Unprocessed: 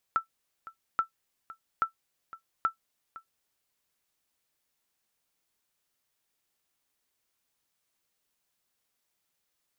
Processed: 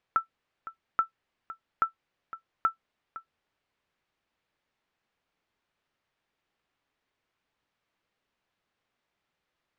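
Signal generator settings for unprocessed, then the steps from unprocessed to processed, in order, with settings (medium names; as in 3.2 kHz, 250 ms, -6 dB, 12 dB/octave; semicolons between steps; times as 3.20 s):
sonar ping 1.33 kHz, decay 0.11 s, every 0.83 s, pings 4, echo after 0.51 s, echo -18 dB -16.5 dBFS
low-pass 2.7 kHz 12 dB/octave; in parallel at -2 dB: peak limiter -25.5 dBFS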